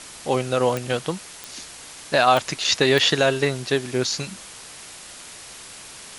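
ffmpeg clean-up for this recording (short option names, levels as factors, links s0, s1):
-af "adeclick=t=4,afwtdn=0.013"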